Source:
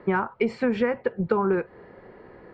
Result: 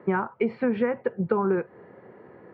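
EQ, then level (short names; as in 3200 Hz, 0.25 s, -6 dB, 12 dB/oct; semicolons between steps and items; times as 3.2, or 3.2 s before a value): HPF 100 Hz 24 dB/oct; air absorption 380 m; 0.0 dB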